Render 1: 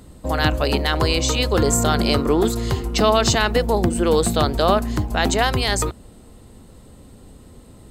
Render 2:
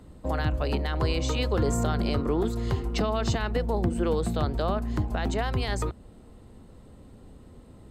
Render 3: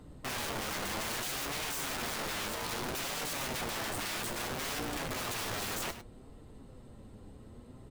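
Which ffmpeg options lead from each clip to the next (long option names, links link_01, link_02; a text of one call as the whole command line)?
ffmpeg -i in.wav -filter_complex "[0:a]highshelf=frequency=4100:gain=-11.5,acrossover=split=180[link_01][link_02];[link_02]alimiter=limit=-14.5dB:level=0:latency=1:release=351[link_03];[link_01][link_03]amix=inputs=2:normalize=0,volume=-4.5dB" out.wav
ffmpeg -i in.wav -af "aeval=exprs='(mod(31.6*val(0)+1,2)-1)/31.6':channel_layout=same,aecho=1:1:102:0.251,flanger=delay=6.5:depth=3.5:regen=57:speed=0.62:shape=triangular,volume=2dB" out.wav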